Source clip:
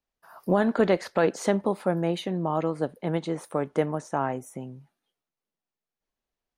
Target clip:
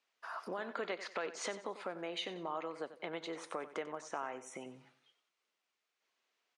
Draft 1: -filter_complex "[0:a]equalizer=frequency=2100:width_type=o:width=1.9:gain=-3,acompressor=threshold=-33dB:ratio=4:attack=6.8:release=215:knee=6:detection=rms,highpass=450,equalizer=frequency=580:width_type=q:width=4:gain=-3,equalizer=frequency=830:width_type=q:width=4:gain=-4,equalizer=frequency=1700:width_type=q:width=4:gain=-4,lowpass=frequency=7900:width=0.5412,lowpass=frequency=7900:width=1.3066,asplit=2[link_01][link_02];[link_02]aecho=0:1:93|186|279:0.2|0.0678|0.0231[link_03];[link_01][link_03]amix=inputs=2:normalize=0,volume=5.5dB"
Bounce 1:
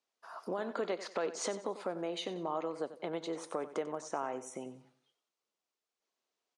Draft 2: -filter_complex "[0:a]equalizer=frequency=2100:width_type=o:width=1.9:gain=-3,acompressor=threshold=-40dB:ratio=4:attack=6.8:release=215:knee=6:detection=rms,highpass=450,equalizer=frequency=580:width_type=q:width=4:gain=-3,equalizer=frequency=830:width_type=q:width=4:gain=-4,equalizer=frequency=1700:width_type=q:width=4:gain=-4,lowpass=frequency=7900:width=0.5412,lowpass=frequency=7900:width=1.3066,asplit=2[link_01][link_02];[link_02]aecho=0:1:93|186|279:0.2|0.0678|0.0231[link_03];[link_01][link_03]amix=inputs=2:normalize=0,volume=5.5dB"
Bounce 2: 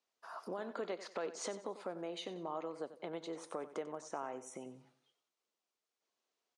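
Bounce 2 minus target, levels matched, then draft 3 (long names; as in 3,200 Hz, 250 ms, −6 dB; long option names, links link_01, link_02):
2,000 Hz band −6.0 dB
-filter_complex "[0:a]equalizer=frequency=2100:width_type=o:width=1.9:gain=7.5,acompressor=threshold=-40dB:ratio=4:attack=6.8:release=215:knee=6:detection=rms,highpass=450,equalizer=frequency=580:width_type=q:width=4:gain=-3,equalizer=frequency=830:width_type=q:width=4:gain=-4,equalizer=frequency=1700:width_type=q:width=4:gain=-4,lowpass=frequency=7900:width=0.5412,lowpass=frequency=7900:width=1.3066,asplit=2[link_01][link_02];[link_02]aecho=0:1:93|186|279:0.2|0.0678|0.0231[link_03];[link_01][link_03]amix=inputs=2:normalize=0,volume=5.5dB"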